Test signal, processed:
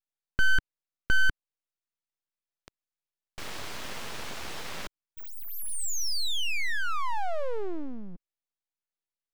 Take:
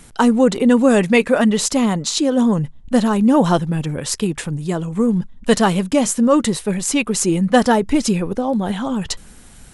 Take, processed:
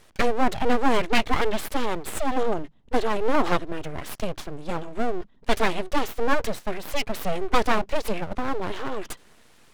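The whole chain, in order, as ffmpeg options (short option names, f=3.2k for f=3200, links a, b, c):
-filter_complex "[0:a]acrossover=split=150 5000:gain=0.158 1 0.2[a][b][c];[a][b][c]amix=inputs=3:normalize=0,aeval=exprs='abs(val(0))':c=same,volume=-4dB"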